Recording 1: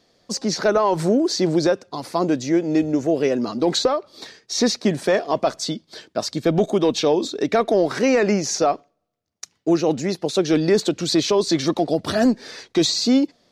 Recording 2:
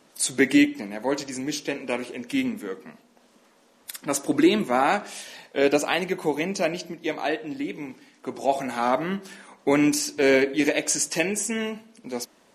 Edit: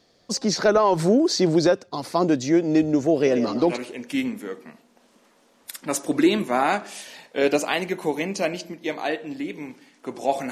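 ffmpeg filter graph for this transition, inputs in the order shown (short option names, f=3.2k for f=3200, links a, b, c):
-filter_complex "[0:a]asettb=1/sr,asplit=3[a][b][c];[a]atrim=end=3.144[d];[b]atrim=start=3.14:end=3.78,asetpts=PTS-STARTPTS,afade=t=in:d=0.004:c=qsin,afade=t=out:st=0.636:d=0.004:c=qsin,asplit=5[e][f][g][h][i];[f]adelay=117,afreqshift=52,volume=-9.5dB[j];[g]adelay=234,afreqshift=104,volume=-18.6dB[k];[h]adelay=351,afreqshift=156,volume=-27.7dB[l];[i]adelay=468,afreqshift=208,volume=-36.9dB[m];[e][j][k][l][m]amix=inputs=5:normalize=0,atrim=end_sample=28224[n];[c]atrim=start=3.776[o];[d][n]acrossfade=d=0.004:c1=hsin:c2=qsin[p];[p][o]acrossfade=d=0.004:c1=qsin:c2=hsin,apad=whole_dur=10.51,atrim=end=10.51,atrim=end=3.78,asetpts=PTS-STARTPTS[q];[1:a]atrim=start=1.86:end=8.71,asetpts=PTS-STARTPTS[r];[q][r]acrossfade=d=0.12:c1=tri:c2=tri"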